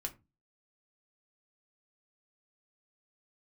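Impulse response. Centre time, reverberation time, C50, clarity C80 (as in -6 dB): 7 ms, 0.25 s, 18.0 dB, 25.0 dB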